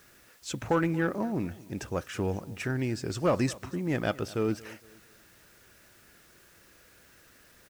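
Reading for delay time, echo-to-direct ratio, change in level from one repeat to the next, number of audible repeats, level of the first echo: 230 ms, −20.0 dB, −9.0 dB, 2, −20.5 dB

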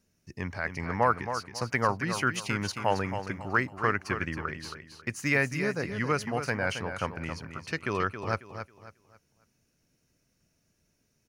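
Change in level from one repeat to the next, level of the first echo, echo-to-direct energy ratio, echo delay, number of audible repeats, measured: −10.0 dB, −9.0 dB, −8.5 dB, 272 ms, 3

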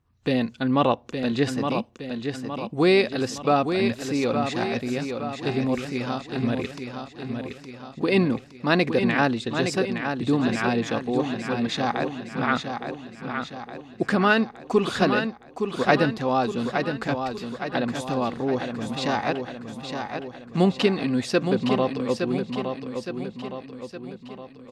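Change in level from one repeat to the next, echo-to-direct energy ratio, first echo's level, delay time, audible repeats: −5.5 dB, −5.0 dB, −6.5 dB, 865 ms, 6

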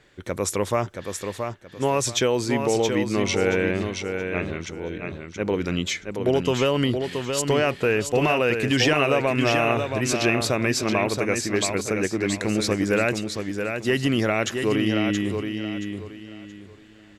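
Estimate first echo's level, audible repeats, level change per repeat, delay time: −6.0 dB, 3, −11.0 dB, 675 ms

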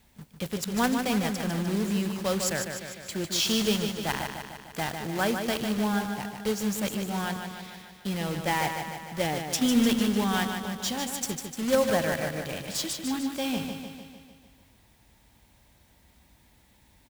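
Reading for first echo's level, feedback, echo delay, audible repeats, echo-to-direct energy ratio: −6.5 dB, 59%, 150 ms, 7, −4.5 dB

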